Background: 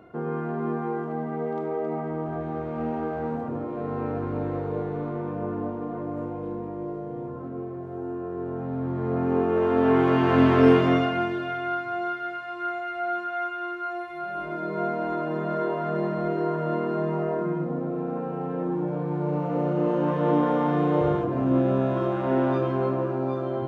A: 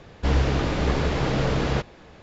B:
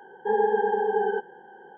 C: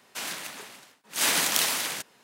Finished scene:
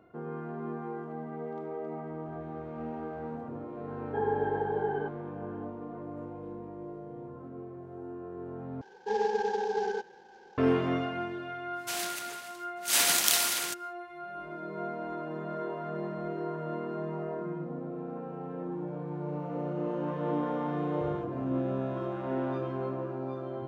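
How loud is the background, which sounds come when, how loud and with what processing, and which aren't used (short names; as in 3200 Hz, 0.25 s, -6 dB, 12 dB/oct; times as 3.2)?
background -9 dB
3.88 add B -7.5 dB
8.81 replace with B -6 dB + CVSD 32 kbps
11.72 add C -6 dB, fades 0.10 s + high shelf 2500 Hz +7 dB
not used: A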